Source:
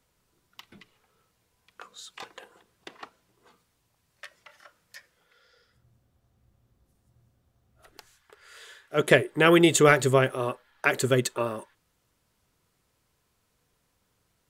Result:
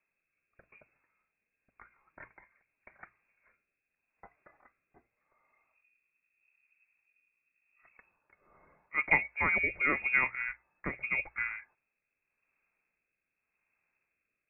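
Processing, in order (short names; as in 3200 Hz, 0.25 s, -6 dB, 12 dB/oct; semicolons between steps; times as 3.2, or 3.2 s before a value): inverted band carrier 2600 Hz; rotary speaker horn 0.85 Hz; notches 60/120 Hz; gain -6.5 dB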